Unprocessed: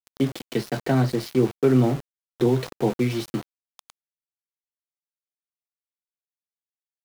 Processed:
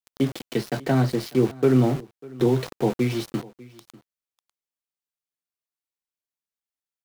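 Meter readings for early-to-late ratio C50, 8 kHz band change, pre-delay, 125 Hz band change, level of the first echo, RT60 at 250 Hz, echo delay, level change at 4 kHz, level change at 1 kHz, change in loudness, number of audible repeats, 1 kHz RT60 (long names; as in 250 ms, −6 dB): no reverb audible, 0.0 dB, no reverb audible, 0.0 dB, −22.0 dB, no reverb audible, 596 ms, 0.0 dB, 0.0 dB, 0.0 dB, 1, no reverb audible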